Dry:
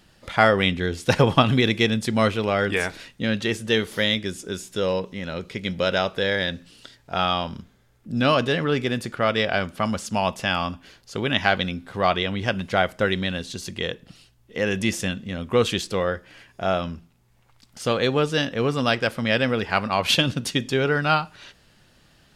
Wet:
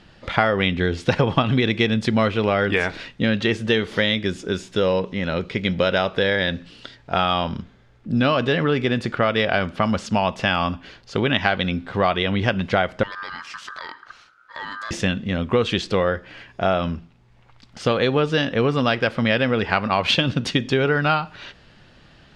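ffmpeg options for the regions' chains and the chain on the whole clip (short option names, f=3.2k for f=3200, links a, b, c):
-filter_complex "[0:a]asettb=1/sr,asplit=3[a][b][c];[a]atrim=end=13.034[d];[b]atrim=start=13.03:end=14.91,asetpts=PTS-STARTPTS,afade=t=in:d=0.004:c=qsin,afade=t=out:st=1.876:d=0.004:c=qsin,asoftclip=type=hard:threshold=-15dB,acompressor=threshold=-34dB:ratio=5:attack=3.2:release=140:knee=1:detection=peak,aeval=exprs='val(0)*sin(2*PI*1400*n/s)':c=same[e];[c]atrim=start=14.906[f];[d][e]acrossfade=d=0.004:c1=hsin:c2=qsin[g];[g][f]acrossfade=d=0.004:c1=qsin:c2=hsin,lowpass=4k,acompressor=threshold=-23dB:ratio=4,volume=7dB"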